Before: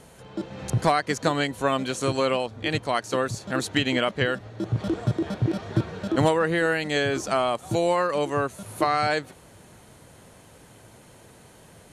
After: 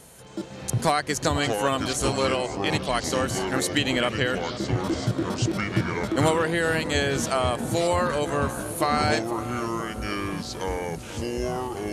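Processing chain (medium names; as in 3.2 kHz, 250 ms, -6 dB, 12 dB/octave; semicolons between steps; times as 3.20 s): treble shelf 5.9 kHz +12 dB; ever faster or slower copies 267 ms, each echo -6 st, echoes 3, each echo -6 dB; filtered feedback delay 490 ms, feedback 71%, low-pass 1.3 kHz, level -12 dB; trim -1.5 dB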